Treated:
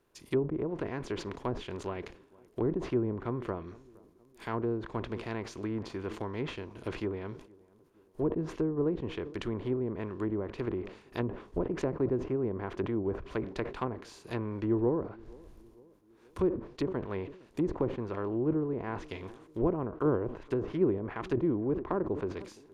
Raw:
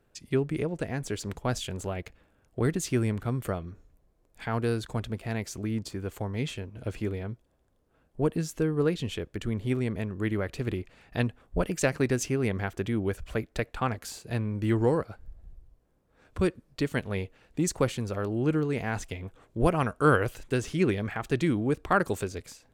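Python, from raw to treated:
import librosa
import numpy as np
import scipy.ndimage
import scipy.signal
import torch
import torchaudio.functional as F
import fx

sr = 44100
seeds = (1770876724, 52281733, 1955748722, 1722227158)

y = fx.spec_flatten(x, sr, power=0.68)
y = fx.notch(y, sr, hz=7800.0, q=11.0)
y = fx.small_body(y, sr, hz=(360.0, 1000.0), ring_ms=20, db=9)
y = fx.env_lowpass_down(y, sr, base_hz=600.0, full_db=-20.0)
y = fx.echo_tape(y, sr, ms=464, feedback_pct=65, wet_db=-23, lp_hz=1000.0, drive_db=5.0, wow_cents=21)
y = fx.sustainer(y, sr, db_per_s=110.0)
y = F.gain(torch.from_numpy(y), -7.5).numpy()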